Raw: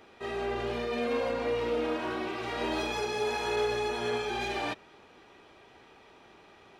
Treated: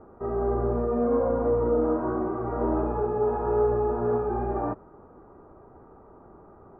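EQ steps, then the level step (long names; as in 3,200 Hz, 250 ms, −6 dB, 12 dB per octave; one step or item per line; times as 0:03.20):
elliptic low-pass filter 1,300 Hz, stop band 80 dB
low-shelf EQ 74 Hz +9.5 dB
low-shelf EQ 480 Hz +6.5 dB
+3.0 dB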